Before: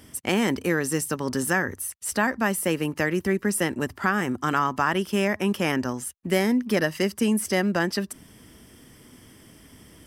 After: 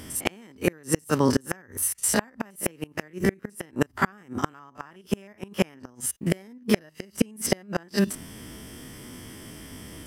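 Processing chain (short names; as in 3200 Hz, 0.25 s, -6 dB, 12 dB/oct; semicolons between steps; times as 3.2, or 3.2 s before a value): stepped spectrum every 50 ms; flipped gate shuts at -16 dBFS, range -33 dB; gain +9 dB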